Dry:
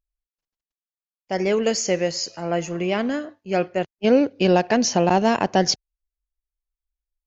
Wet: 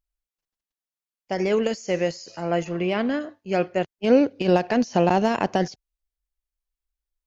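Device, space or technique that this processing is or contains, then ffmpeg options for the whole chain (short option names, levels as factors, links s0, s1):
de-esser from a sidechain: -filter_complex "[0:a]asplit=3[s0][s1][s2];[s0]afade=t=out:st=2.64:d=0.02[s3];[s1]lowpass=f=5100:w=0.5412,lowpass=f=5100:w=1.3066,afade=t=in:st=2.64:d=0.02,afade=t=out:st=3.19:d=0.02[s4];[s2]afade=t=in:st=3.19:d=0.02[s5];[s3][s4][s5]amix=inputs=3:normalize=0,asplit=2[s6][s7];[s7]highpass=5200,apad=whole_len=320282[s8];[s6][s8]sidechaincompress=threshold=0.00891:ratio=10:attack=3.2:release=38"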